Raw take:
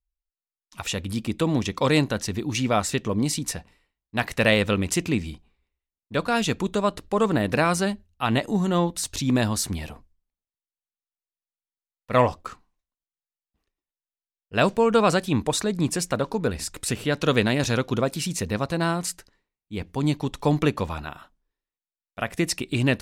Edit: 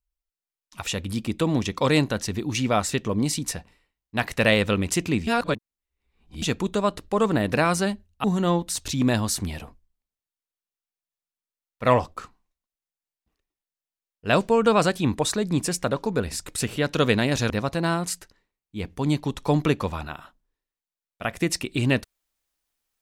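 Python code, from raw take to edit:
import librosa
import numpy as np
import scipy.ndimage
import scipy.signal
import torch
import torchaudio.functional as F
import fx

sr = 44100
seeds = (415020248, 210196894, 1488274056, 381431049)

y = fx.edit(x, sr, fx.reverse_span(start_s=5.27, length_s=1.15),
    fx.cut(start_s=8.24, length_s=0.28),
    fx.cut(start_s=17.78, length_s=0.69), tone=tone)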